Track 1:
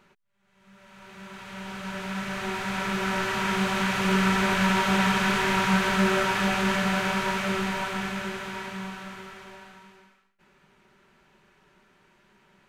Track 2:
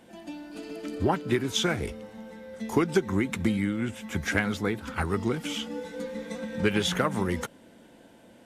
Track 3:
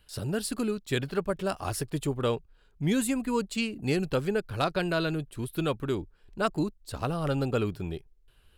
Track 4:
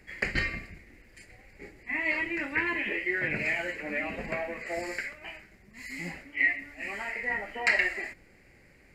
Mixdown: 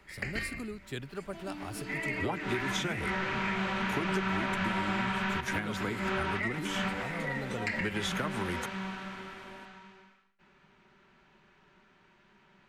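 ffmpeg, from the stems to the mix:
-filter_complex "[0:a]acrossover=split=3700[a][b];[b]acompressor=threshold=-43dB:ratio=4:attack=1:release=60[c];[a][c]amix=inputs=2:normalize=0,lowpass=5.1k,volume=-1.5dB[d];[1:a]adelay=1200,volume=-3dB[e];[2:a]volume=-9.5dB,asplit=3[f][g][h];[f]atrim=end=2.93,asetpts=PTS-STARTPTS,afade=t=out:st=2.926:d=0.004:c=hsin[i];[g]atrim=start=2.93:end=5.4,asetpts=PTS-STARTPTS,volume=0[j];[h]atrim=start=5.4,asetpts=PTS-STARTPTS,afade=t=in:d=0.004:c=hsin[k];[i][j][k]concat=n=3:v=0:a=1,asplit=2[l][m];[3:a]volume=-5dB[n];[m]apad=whole_len=559326[o];[d][o]sidechaincompress=threshold=-49dB:ratio=8:attack=5:release=148[p];[p][e][l][n]amix=inputs=4:normalize=0,acrossover=split=150|360[q][r][s];[q]acompressor=threshold=-40dB:ratio=4[t];[r]acompressor=threshold=-39dB:ratio=4[u];[s]acompressor=threshold=-31dB:ratio=4[v];[t][u][v]amix=inputs=3:normalize=0,equalizer=f=490:w=3.3:g=-4"

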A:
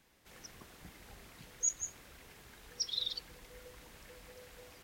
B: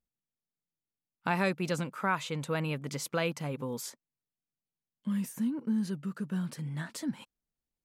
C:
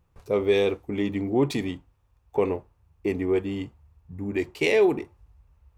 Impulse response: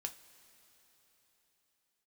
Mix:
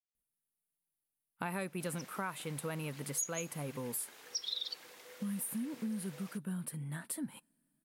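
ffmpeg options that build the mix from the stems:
-filter_complex "[0:a]highpass=390,adelay=1550,volume=1.5dB,asplit=2[a][b];[b]volume=-17.5dB[c];[1:a]highshelf=f=7.9k:t=q:w=3:g=9.5,adelay=150,volume=-5dB,asplit=2[d][e];[e]volume=-18dB[f];[a][d]amix=inputs=2:normalize=0,acompressor=threshold=-36dB:ratio=4,volume=0dB[g];[3:a]atrim=start_sample=2205[h];[c][f]amix=inputs=2:normalize=0[i];[i][h]afir=irnorm=-1:irlink=0[j];[g][j]amix=inputs=2:normalize=0"

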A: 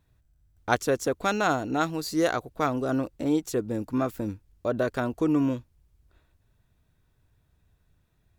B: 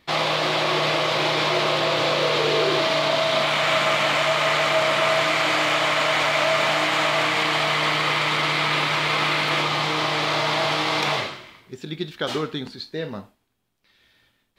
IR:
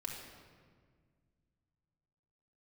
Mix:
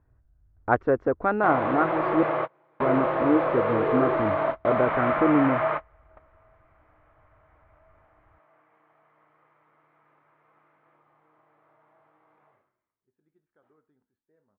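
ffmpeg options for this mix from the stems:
-filter_complex "[0:a]volume=3dB,asplit=3[a][b][c];[a]atrim=end=2.23,asetpts=PTS-STARTPTS,afade=t=out:st=2.226:d=0.004:c=hsin[d];[b]atrim=start=2.23:end=2.8,asetpts=PTS-STARTPTS,volume=0[e];[c]atrim=start=2.8,asetpts=PTS-STARTPTS,afade=t=in:d=0.004:c=hsin[f];[d][e][f]concat=n=3:v=0:a=1,asplit=2[g][h];[1:a]adelay=1350,volume=-2dB[i];[h]apad=whole_len=702780[j];[i][j]sidechaingate=range=-37dB:threshold=-50dB:ratio=16:detection=peak[k];[g][k]amix=inputs=2:normalize=0,lowpass=f=1.6k:w=0.5412,lowpass=f=1.6k:w=1.3066,equalizer=f=170:w=3.2:g=-7"

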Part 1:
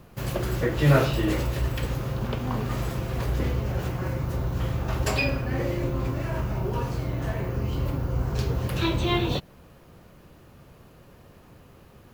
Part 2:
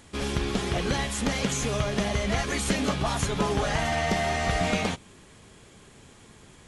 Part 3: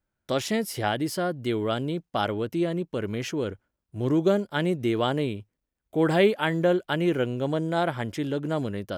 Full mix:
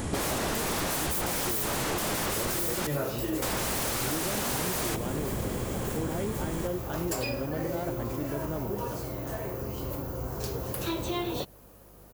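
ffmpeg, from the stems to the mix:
-filter_complex "[0:a]bass=f=250:g=-12,treble=f=4k:g=11,acontrast=87,adelay=2050,volume=-6dB[a];[1:a]aeval=exprs='0.178*sin(PI/2*10*val(0)/0.178)':c=same,volume=-2dB,asplit=3[b][c][d];[b]atrim=end=2.87,asetpts=PTS-STARTPTS,afade=t=out:st=2.866:d=0.004:c=hsin[e];[c]atrim=start=2.87:end=3.42,asetpts=PTS-STARTPTS,volume=0[f];[d]atrim=start=3.42,asetpts=PTS-STARTPTS,afade=t=in:d=0.004:c=hsin[g];[e][f][g]concat=n=3:v=0:a=1[h];[2:a]alimiter=limit=-16dB:level=0:latency=1,volume=-5.5dB[i];[a][h][i]amix=inputs=3:normalize=0,equalizer=f=3.5k:w=0.39:g=-10.5,aeval=exprs='val(0)+0.00158*(sin(2*PI*50*n/s)+sin(2*PI*2*50*n/s)/2+sin(2*PI*3*50*n/s)/3+sin(2*PI*4*50*n/s)/4+sin(2*PI*5*50*n/s)/5)':c=same,acompressor=threshold=-27dB:ratio=6"

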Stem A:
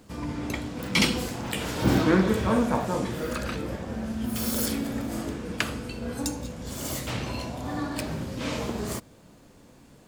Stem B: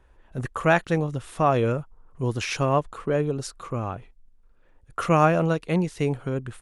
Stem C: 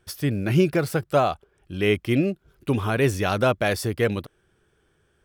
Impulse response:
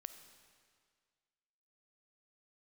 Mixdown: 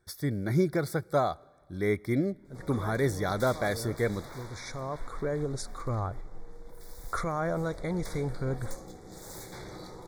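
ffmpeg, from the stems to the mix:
-filter_complex "[0:a]aeval=exprs='val(0)*sin(2*PI*250*n/s)':c=same,aeval=exprs='0.0422*(abs(mod(val(0)/0.0422+3,4)-2)-1)':c=same,adelay=2450,volume=-0.5dB,afade=t=out:st=4.09:d=0.52:silence=0.446684,afade=t=in:st=7.42:d=0.56:silence=0.334965[a];[1:a]alimiter=limit=-18dB:level=0:latency=1,asubboost=boost=7:cutoff=70,adelay=2150,volume=-4.5dB,asplit=2[b][c];[c]volume=-8dB[d];[2:a]volume=-7.5dB,asplit=3[e][f][g];[f]volume=-11dB[h];[g]apad=whole_len=386356[i];[b][i]sidechaincompress=threshold=-46dB:ratio=8:attack=16:release=771[j];[3:a]atrim=start_sample=2205[k];[d][h]amix=inputs=2:normalize=0[l];[l][k]afir=irnorm=-1:irlink=0[m];[a][j][e][m]amix=inputs=4:normalize=0,asuperstop=centerf=2800:order=20:qfactor=2.6"

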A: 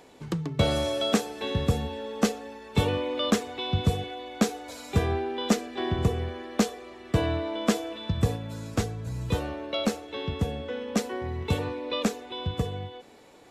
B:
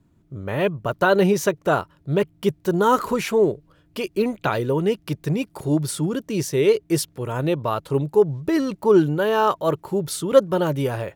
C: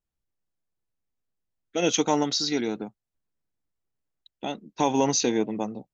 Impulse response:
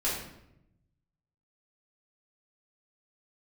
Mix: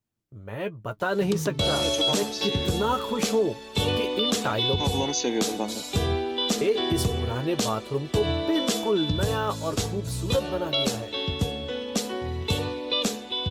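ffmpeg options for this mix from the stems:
-filter_complex "[0:a]highshelf=f=2.6k:t=q:w=1.5:g=7,bandreject=f=71.83:t=h:w=4,bandreject=f=143.66:t=h:w=4,bandreject=f=215.49:t=h:w=4,bandreject=f=287.32:t=h:w=4,bandreject=f=359.15:t=h:w=4,bandreject=f=430.98:t=h:w=4,bandreject=f=502.81:t=h:w=4,bandreject=f=574.64:t=h:w=4,bandreject=f=646.47:t=h:w=4,bandreject=f=718.3:t=h:w=4,bandreject=f=790.13:t=h:w=4,bandreject=f=861.96:t=h:w=4,bandreject=f=933.79:t=h:w=4,bandreject=f=1.00562k:t=h:w=4,bandreject=f=1.07745k:t=h:w=4,bandreject=f=1.14928k:t=h:w=4,bandreject=f=1.22111k:t=h:w=4,bandreject=f=1.29294k:t=h:w=4,bandreject=f=1.36477k:t=h:w=4,bandreject=f=1.4366k:t=h:w=4,bandreject=f=1.50843k:t=h:w=4,bandreject=f=1.58026k:t=h:w=4,bandreject=f=1.65209k:t=h:w=4,bandreject=f=1.72392k:t=h:w=4,bandreject=f=1.79575k:t=h:w=4,bandreject=f=1.86758k:t=h:w=4,bandreject=f=1.93941k:t=h:w=4,bandreject=f=2.01124k:t=h:w=4,bandreject=f=2.08307k:t=h:w=4,bandreject=f=2.1549k:t=h:w=4,bandreject=f=2.22673k:t=h:w=4,bandreject=f=2.29856k:t=h:w=4,bandreject=f=2.37039k:t=h:w=4,bandreject=f=2.44222k:t=h:w=4,bandreject=f=2.51405k:t=h:w=4,adelay=1000,volume=2dB[a];[1:a]agate=range=-15dB:threshold=-42dB:ratio=16:detection=peak,dynaudnorm=f=210:g=7:m=11.5dB,flanger=delay=8.8:depth=1.1:regen=37:speed=0.27:shape=triangular,volume=-7.5dB,asplit=3[b][c][d];[b]atrim=end=4.76,asetpts=PTS-STARTPTS,afade=t=out:st=4.756:d=0.004:c=hsin[e];[c]atrim=start=4.76:end=6.61,asetpts=PTS-STARTPTS,volume=0[f];[d]atrim=start=6.61,asetpts=PTS-STARTPTS,afade=t=in:d=0.004:c=hsin[g];[e][f][g]concat=n=3:v=0:a=1,asplit=2[h][i];[2:a]highpass=180,volume=2.5dB[j];[i]apad=whole_len=261706[k];[j][k]sidechaincompress=threshold=-31dB:ratio=8:attack=16:release=1270[l];[a][h][l]amix=inputs=3:normalize=0,alimiter=limit=-14.5dB:level=0:latency=1:release=78"

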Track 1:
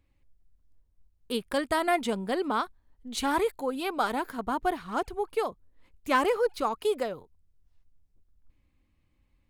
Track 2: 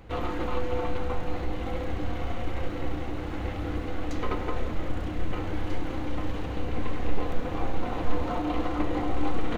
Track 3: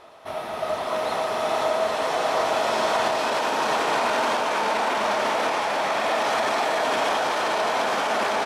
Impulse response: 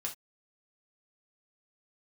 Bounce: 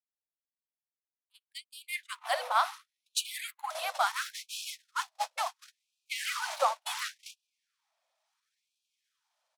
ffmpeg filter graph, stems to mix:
-filter_complex "[0:a]highpass=f=57:p=1,volume=3dB,asplit=3[a][b][c];[b]volume=-13.5dB[d];[1:a]lowshelf=f=110:g=6,adelay=1700,volume=-5dB[e];[2:a]bass=f=250:g=9,treble=f=4k:g=4,acrossover=split=360|3000[f][g][h];[g]acompressor=threshold=-37dB:ratio=2[i];[f][i][h]amix=inputs=3:normalize=0,asoftclip=type=tanh:threshold=-28dB,adelay=2000,volume=-5dB,asplit=3[j][k][l];[j]atrim=end=3.15,asetpts=PTS-STARTPTS,afade=t=out:st=3.146:d=0.004:c=hsin[m];[k]atrim=start=3.15:end=3.7,asetpts=PTS-STARTPTS,volume=0[n];[l]atrim=start=3.7,asetpts=PTS-STARTPTS,afade=t=in:d=0.004:c=hsin[o];[m][n][o]concat=n=3:v=0:a=1,asplit=2[p][q];[q]volume=-8.5dB[r];[c]apad=whole_len=497145[s];[e][s]sidechaingate=range=-33dB:threshold=-52dB:ratio=16:detection=peak[t];[a][p]amix=inputs=2:normalize=0,bass=f=250:g=-13,treble=f=4k:g=3,alimiter=limit=-16dB:level=0:latency=1:release=222,volume=0dB[u];[3:a]atrim=start_sample=2205[v];[d][r]amix=inputs=2:normalize=0[w];[w][v]afir=irnorm=-1:irlink=0[x];[t][u][x]amix=inputs=3:normalize=0,agate=range=-45dB:threshold=-23dB:ratio=16:detection=peak,afftfilt=real='re*gte(b*sr/1024,500*pow(2400/500,0.5+0.5*sin(2*PI*0.71*pts/sr)))':imag='im*gte(b*sr/1024,500*pow(2400/500,0.5+0.5*sin(2*PI*0.71*pts/sr)))':win_size=1024:overlap=0.75"

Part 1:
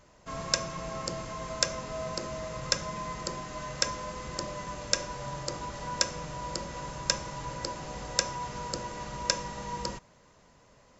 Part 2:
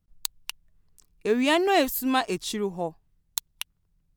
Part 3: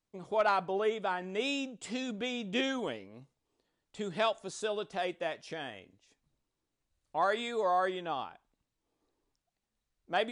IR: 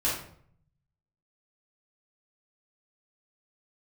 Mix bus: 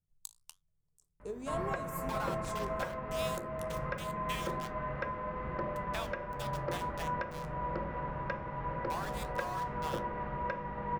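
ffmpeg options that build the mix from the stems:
-filter_complex "[0:a]lowpass=f=2k:w=0.5412,lowpass=f=2k:w=1.3066,aeval=exprs='val(0)+0.00158*(sin(2*PI*50*n/s)+sin(2*PI*2*50*n/s)/2+sin(2*PI*3*50*n/s)/3+sin(2*PI*4*50*n/s)/4+sin(2*PI*5*50*n/s)/5)':c=same,bandreject=f=60:t=h:w=6,bandreject=f=120:t=h:w=6,bandreject=f=180:t=h:w=6,bandreject=f=240:t=h:w=6,bandreject=f=300:t=h:w=6,adelay=1200,volume=1.5dB[a];[1:a]equalizer=f=125:t=o:w=1:g=11,equalizer=f=250:t=o:w=1:g=-4,equalizer=f=500:t=o:w=1:g=7,equalizer=f=1k:t=o:w=1:g=3,equalizer=f=2k:t=o:w=1:g=-12,equalizer=f=4k:t=o:w=1:g=-3,equalizer=f=8k:t=o:w=1:g=9,volume=-13.5dB[b];[2:a]highpass=f=720:w=0.5412,highpass=f=720:w=1.3066,aeval=exprs='val(0)*gte(abs(val(0)),0.0224)':c=same,adelay=1750,volume=3dB[c];[b][c]amix=inputs=2:normalize=0,flanger=delay=9.9:depth=9.7:regen=-67:speed=1.7:shape=triangular,acompressor=threshold=-37dB:ratio=6,volume=0dB[d];[a][d]amix=inputs=2:normalize=0,alimiter=limit=-22dB:level=0:latency=1:release=396"

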